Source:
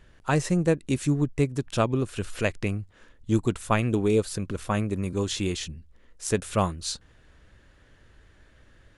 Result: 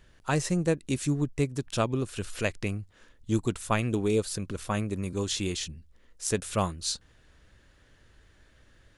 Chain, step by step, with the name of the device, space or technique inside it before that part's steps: presence and air boost (peaking EQ 4.9 kHz +3.5 dB 1.5 oct; treble shelf 9.4 kHz +6.5 dB); trim -3.5 dB

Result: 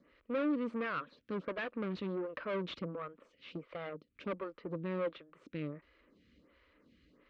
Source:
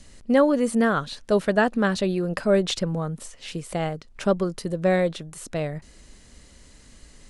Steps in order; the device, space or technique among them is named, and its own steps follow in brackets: vibe pedal into a guitar amplifier (lamp-driven phase shifter 1.4 Hz; valve stage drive 28 dB, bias 0.65; cabinet simulation 76–3400 Hz, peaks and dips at 110 Hz -8 dB, 300 Hz +7 dB, 510 Hz +6 dB, 780 Hz -10 dB, 1.2 kHz +7 dB, 2.3 kHz +4 dB); trim -7 dB

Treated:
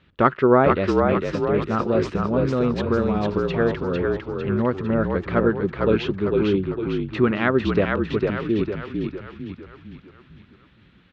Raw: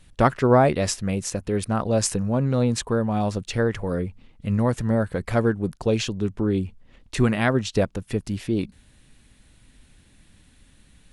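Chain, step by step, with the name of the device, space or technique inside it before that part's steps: frequency-shifting delay pedal into a guitar cabinet (frequency-shifting echo 452 ms, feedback 51%, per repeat -46 Hz, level -3.5 dB; cabinet simulation 88–3500 Hz, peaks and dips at 120 Hz -5 dB, 380 Hz +6 dB, 740 Hz -4 dB, 1.3 kHz +6 dB)

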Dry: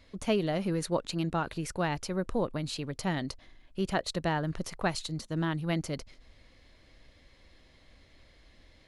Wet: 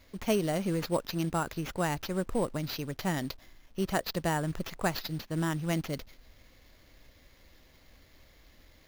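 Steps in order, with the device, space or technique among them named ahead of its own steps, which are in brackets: early companding sampler (sample-rate reducer 8.8 kHz, jitter 0%; companded quantiser 6-bit)

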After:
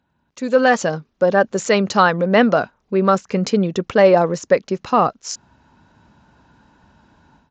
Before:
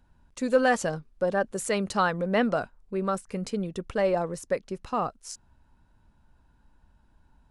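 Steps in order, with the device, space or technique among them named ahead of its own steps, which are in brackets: Bluetooth headset (high-pass 130 Hz 12 dB/octave; level rider gain up to 16 dB; resampled via 16 kHz; SBC 64 kbps 16 kHz)

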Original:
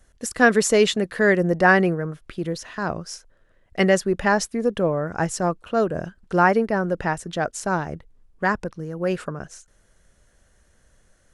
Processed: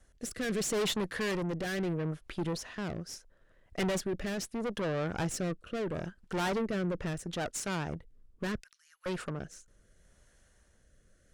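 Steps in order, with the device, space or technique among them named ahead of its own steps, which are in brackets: 8.60–9.06 s: Bessel high-pass 2.6 kHz, order 6; overdriven rotary cabinet (valve stage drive 28 dB, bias 0.55; rotary cabinet horn 0.75 Hz)

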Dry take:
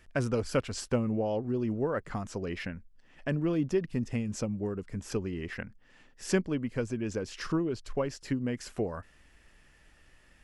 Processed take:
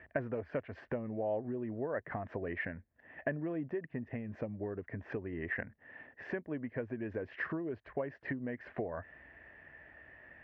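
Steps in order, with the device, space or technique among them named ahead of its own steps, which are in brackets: bass amplifier (compression 5:1, threshold -40 dBFS, peak gain reduction 17 dB; cabinet simulation 68–2100 Hz, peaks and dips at 72 Hz -4 dB, 120 Hz -4 dB, 190 Hz -7 dB, 650 Hz +8 dB, 1.3 kHz -6 dB, 1.8 kHz +9 dB); trim +4.5 dB

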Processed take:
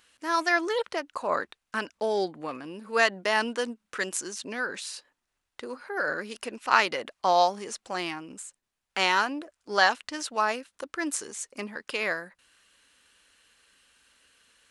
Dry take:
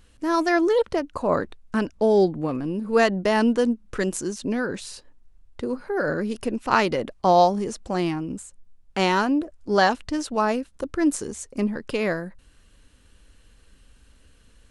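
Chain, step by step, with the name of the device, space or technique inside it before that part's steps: filter by subtraction (in parallel: low-pass 1.8 kHz 12 dB/octave + polarity flip)

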